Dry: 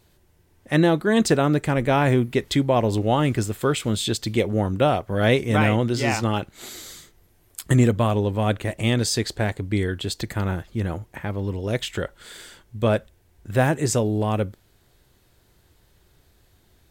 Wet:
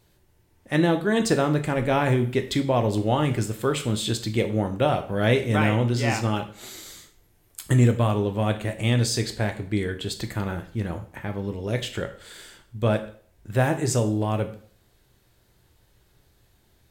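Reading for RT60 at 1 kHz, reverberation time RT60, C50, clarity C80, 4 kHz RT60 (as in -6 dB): 0.50 s, 0.50 s, 12.0 dB, 16.0 dB, 0.45 s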